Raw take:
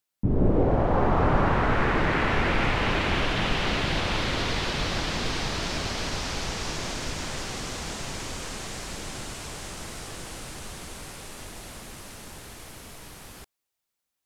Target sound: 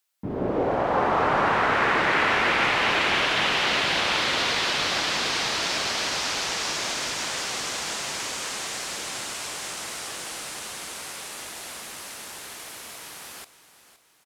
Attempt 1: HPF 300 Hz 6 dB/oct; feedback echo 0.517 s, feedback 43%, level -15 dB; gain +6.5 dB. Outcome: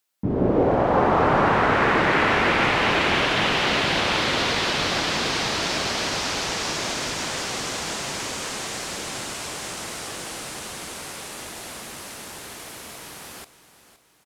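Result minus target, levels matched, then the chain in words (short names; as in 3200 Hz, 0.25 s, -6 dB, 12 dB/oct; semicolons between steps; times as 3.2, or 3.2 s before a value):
250 Hz band +5.0 dB
HPF 860 Hz 6 dB/oct; feedback echo 0.517 s, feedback 43%, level -15 dB; gain +6.5 dB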